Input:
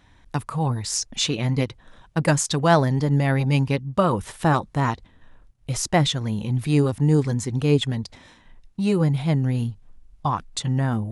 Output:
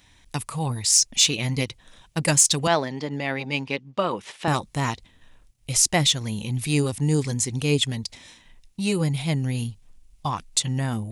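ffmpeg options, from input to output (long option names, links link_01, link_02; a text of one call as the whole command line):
ffmpeg -i in.wav -filter_complex "[0:a]asettb=1/sr,asplit=3[link_01][link_02][link_03];[link_01]atrim=end=2.674[link_04];[link_02]atrim=start=2.67:end=4.48,asetpts=PTS-STARTPTS,afade=type=in:duration=0.004:curve=qsin,afade=type=out:start_time=1.806:duration=0.004:curve=qsin,highpass=260,lowpass=3500[link_05];[link_03]atrim=start=4.476[link_06];[link_04][link_05]acrossfade=duration=0.004:curve1=hsin:curve2=qsin[link_07];[link_07][link_06]acrossfade=duration=0.004:curve1=qsin:curve2=hsin,aexciter=amount=2.7:drive=6.3:freq=2100,volume=-3.5dB" out.wav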